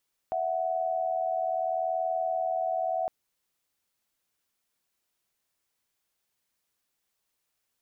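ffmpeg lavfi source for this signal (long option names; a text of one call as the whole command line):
ffmpeg -f lavfi -i "aevalsrc='0.0355*(sin(2*PI*659.26*t)+sin(2*PI*739.99*t))':duration=2.76:sample_rate=44100" out.wav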